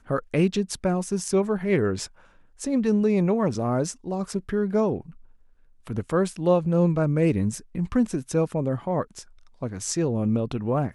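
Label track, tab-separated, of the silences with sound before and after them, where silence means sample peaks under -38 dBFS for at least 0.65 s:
5.100000	5.870000	silence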